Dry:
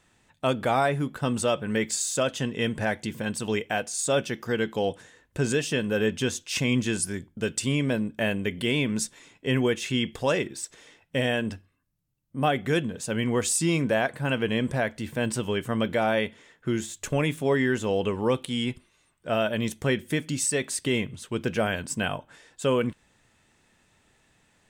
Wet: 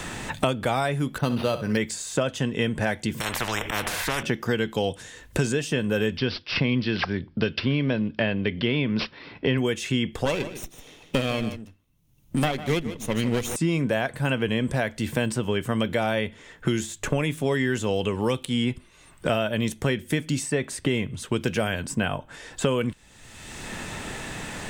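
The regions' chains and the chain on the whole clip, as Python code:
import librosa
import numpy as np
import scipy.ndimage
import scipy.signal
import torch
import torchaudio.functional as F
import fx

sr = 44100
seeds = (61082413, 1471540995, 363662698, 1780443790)

y = fx.chain(x, sr, fx.air_absorb(metres=100.0),
    fx.room_flutter(wall_m=11.3, rt60_s=0.32),
    fx.resample_linear(factor=6), at=(1.18, 1.77))
y = fx.chain(y, sr, fx.peak_eq(hz=250.0, db=-9.5, octaves=1.9),
    fx.auto_swell(attack_ms=105.0),
    fx.spectral_comp(ratio=10.0), at=(3.2, 4.23))
y = fx.chain(y, sr, fx.highpass(hz=49.0, slope=12),
    fx.resample_bad(factor=4, down='none', up='filtered'), at=(6.17, 9.58))
y = fx.chain(y, sr, fx.lower_of_two(delay_ms=0.32),
    fx.echo_single(ms=151, db=-11.0),
    fx.upward_expand(threshold_db=-43.0, expansion=1.5), at=(10.25, 13.56))
y = fx.low_shelf(y, sr, hz=66.0, db=11.0)
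y = fx.band_squash(y, sr, depth_pct=100)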